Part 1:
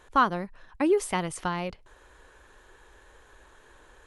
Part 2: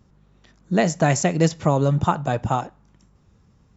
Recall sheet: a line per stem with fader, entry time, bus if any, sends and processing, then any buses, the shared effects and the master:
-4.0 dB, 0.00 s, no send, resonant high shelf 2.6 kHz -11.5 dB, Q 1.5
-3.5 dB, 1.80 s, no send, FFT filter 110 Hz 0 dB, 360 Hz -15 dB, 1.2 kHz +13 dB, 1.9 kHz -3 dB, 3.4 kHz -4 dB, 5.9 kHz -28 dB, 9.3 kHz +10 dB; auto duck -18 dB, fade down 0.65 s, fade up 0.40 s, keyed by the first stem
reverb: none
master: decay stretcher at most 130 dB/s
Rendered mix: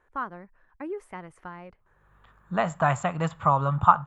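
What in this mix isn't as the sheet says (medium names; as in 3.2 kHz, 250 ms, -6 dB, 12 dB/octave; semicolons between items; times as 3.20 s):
stem 1 -4.0 dB -> -12.0 dB; master: missing decay stretcher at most 130 dB/s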